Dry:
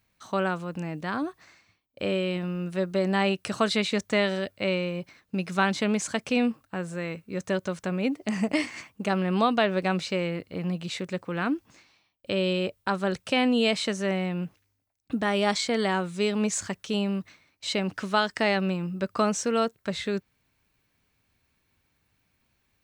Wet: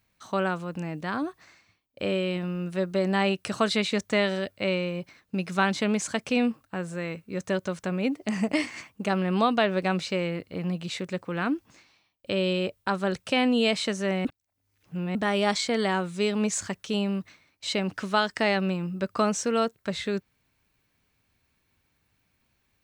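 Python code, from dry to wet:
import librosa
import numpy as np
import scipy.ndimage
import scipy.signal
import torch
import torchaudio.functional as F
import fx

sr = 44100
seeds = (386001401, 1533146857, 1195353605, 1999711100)

y = fx.edit(x, sr, fx.reverse_span(start_s=14.25, length_s=0.9), tone=tone)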